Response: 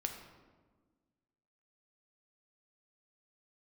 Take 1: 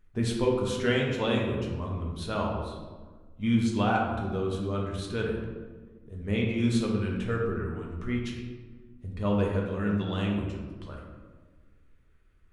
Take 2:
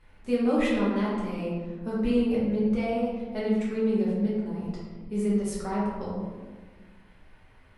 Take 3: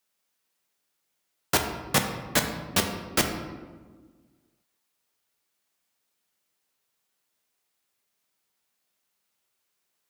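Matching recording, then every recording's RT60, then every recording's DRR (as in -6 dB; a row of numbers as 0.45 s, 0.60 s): 3; 1.4 s, 1.4 s, 1.4 s; -2.0 dB, -8.0 dB, 3.5 dB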